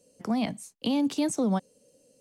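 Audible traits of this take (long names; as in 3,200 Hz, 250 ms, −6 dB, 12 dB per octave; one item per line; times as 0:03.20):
background noise floor −66 dBFS
spectral slope −5.0 dB per octave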